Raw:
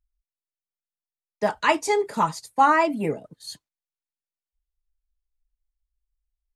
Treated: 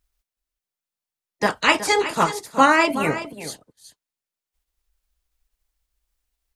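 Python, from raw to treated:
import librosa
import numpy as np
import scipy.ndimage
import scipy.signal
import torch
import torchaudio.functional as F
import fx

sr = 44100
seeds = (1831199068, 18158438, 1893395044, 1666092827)

y = fx.spec_clip(x, sr, under_db=16)
y = y + 10.0 ** (-12.5 / 20.0) * np.pad(y, (int(370 * sr / 1000.0), 0))[:len(y)]
y = F.gain(torch.from_numpy(y), 3.0).numpy()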